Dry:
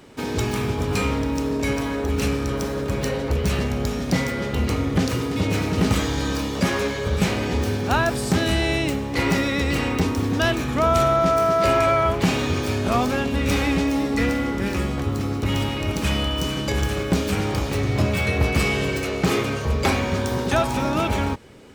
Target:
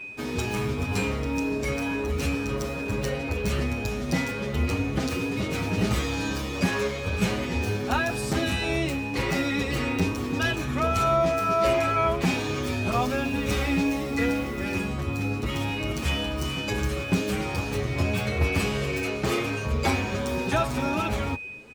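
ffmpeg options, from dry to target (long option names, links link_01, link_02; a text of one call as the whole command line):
ffmpeg -i in.wav -filter_complex "[0:a]aeval=exprs='val(0)+0.0224*sin(2*PI*2500*n/s)':channel_layout=same,asettb=1/sr,asplit=3[link_01][link_02][link_03];[link_01]atrim=end=12.944[link_04];[link_02]atrim=start=12.94:end=14.63,asetpts=PTS-STARTPTS,afade=type=in:duration=0.004:curve=qsin,afade=type=out:start_time=1.686:duration=0.004:curve=qsin,acrusher=bits=8:dc=4:mix=0:aa=0.000001[link_05];[link_03]atrim=start=14.626[link_06];[link_04][link_05]acrossfade=duration=0.004:curve1=hsin:curve2=qsin[link_07];[link_07][link_06]acrossfade=duration=0.004:curve1=qsin:curve2=hsin,asplit=2[link_08][link_09];[link_09]adelay=8,afreqshift=2.1[link_10];[link_08][link_10]amix=inputs=2:normalize=1,volume=-1.5dB" out.wav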